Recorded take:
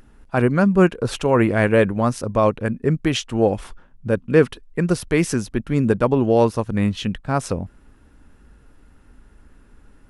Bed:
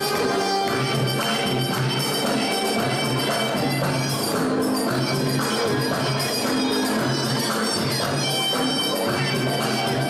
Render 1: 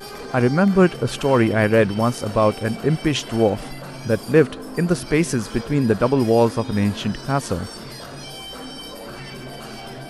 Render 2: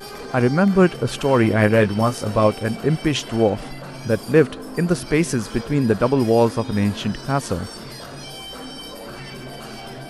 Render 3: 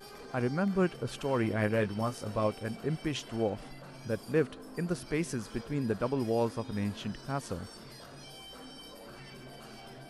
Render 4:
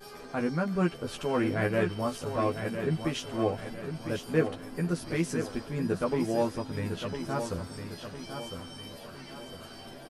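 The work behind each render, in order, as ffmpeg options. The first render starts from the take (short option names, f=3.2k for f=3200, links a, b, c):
-filter_complex "[1:a]volume=-12.5dB[a];[0:a][a]amix=inputs=2:normalize=0"
-filter_complex "[0:a]asettb=1/sr,asplit=3[a][b][c];[a]atrim=end=1.424[d];[b]atrim=start=1.42:end=2.47,asetpts=PTS-STARTPTS,afade=t=in:d=0.004:c=qsin,afade=t=out:st=1.046:d=0.004:c=qsin,asplit=2[e][f];[f]adelay=19,volume=-7.5dB[g];[e][g]amix=inputs=2:normalize=0,atrim=end_sample=46305[h];[c]atrim=start=2.466[i];[d][h]acrossfade=d=0.004:c1=hsin:c2=qsin[j];[j][i]acrossfade=d=0.004:c1=qsin:c2=hsin,asettb=1/sr,asplit=3[k][l][m];[k]atrim=end=3.304[n];[l]atrim=start=3.3:end=3.95,asetpts=PTS-STARTPTS,afade=t=in:d=0.004:c=qsin,afade=t=out:st=0.646:d=0.004:c=qsin,highshelf=f=9.4k:g=-7.5[o];[m]atrim=start=3.946[p];[n][o]acrossfade=d=0.004:c1=hsin:c2=qsin[q];[q][p]acrossfade=d=0.004:c1=qsin:c2=hsin"
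-af "volume=-13.5dB"
-filter_complex "[0:a]asplit=2[a][b];[b]adelay=12,volume=-2.5dB[c];[a][c]amix=inputs=2:normalize=0,aecho=1:1:1005|2010|3015|4020|5025:0.398|0.171|0.0736|0.0317|0.0136"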